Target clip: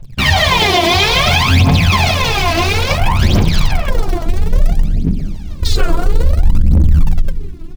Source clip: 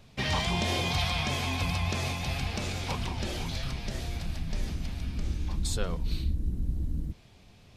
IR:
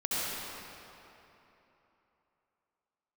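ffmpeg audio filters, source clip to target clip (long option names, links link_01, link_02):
-filter_complex "[0:a]flanger=delay=5.5:depth=8:regen=7:speed=1.7:shape=triangular,asettb=1/sr,asplit=3[link_01][link_02][link_03];[link_01]atrim=end=4.744[link_04];[link_02]atrim=start=4.74:end=5.62,asetpts=PTS-STARTPTS,afade=type=in:duration=0.004:curve=qsin,afade=type=out:start_time=0.876:duration=0.004:curve=qsin,highpass=frequency=350:poles=1[link_05];[link_03]atrim=start=5.616[link_06];[link_04][link_05]acrossfade=duration=0.004:curve1=hsin:curve2=qsin[link_07];[link_07][link_06]acrossfade=duration=0.004:curve1=qsin:curve2=hsin,bandreject=frequency=60:width_type=h:width=6,bandreject=frequency=120:width_type=h:width=6,bandreject=frequency=180:width_type=h:width=6,bandreject=frequency=240:width_type=h:width=6,bandreject=frequency=300:width_type=h:width=6,bandreject=frequency=360:width_type=h:width=6,bandreject=frequency=420:width_type=h:width=6,bandreject=frequency=480:width_type=h:width=6,aecho=1:1:168|336|504|672:0.335|0.127|0.0484|0.0184,asplit=2[link_08][link_09];[1:a]atrim=start_sample=2205[link_10];[link_09][link_10]afir=irnorm=-1:irlink=0,volume=-10.5dB[link_11];[link_08][link_11]amix=inputs=2:normalize=0,afwtdn=0.00891,asplit=2[link_12][link_13];[link_13]acrusher=bits=6:dc=4:mix=0:aa=0.000001,volume=-10dB[link_14];[link_12][link_14]amix=inputs=2:normalize=0,aphaser=in_gain=1:out_gain=1:delay=3.1:decay=0.79:speed=0.59:type=triangular,alimiter=level_in=14.5dB:limit=-1dB:release=50:level=0:latency=1,volume=-1dB"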